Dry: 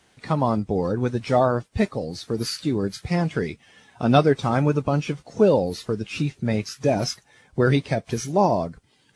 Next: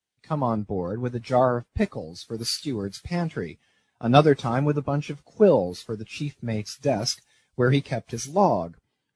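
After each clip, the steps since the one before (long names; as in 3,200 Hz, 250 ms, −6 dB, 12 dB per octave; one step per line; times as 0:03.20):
multiband upward and downward expander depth 70%
level −3 dB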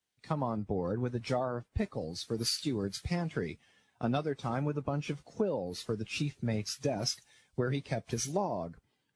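downward compressor 12 to 1, threshold −28 dBFS, peak gain reduction 19.5 dB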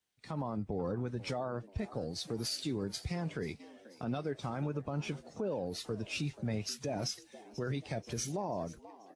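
echo with shifted repeats 485 ms, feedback 52%, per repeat +92 Hz, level −22 dB
brickwall limiter −27 dBFS, peak gain reduction 10 dB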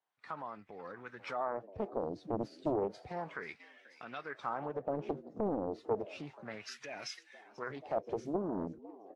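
LFO wah 0.32 Hz 290–2,100 Hz, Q 2.3
highs frequency-modulated by the lows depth 0.91 ms
level +8.5 dB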